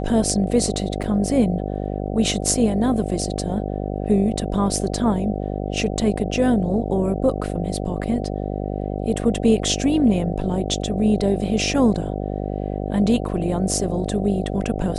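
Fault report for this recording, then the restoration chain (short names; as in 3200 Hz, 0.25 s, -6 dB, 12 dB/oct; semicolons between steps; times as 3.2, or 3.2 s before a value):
buzz 50 Hz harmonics 15 -26 dBFS
1.03 gap 4.7 ms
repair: de-hum 50 Hz, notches 15; interpolate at 1.03, 4.7 ms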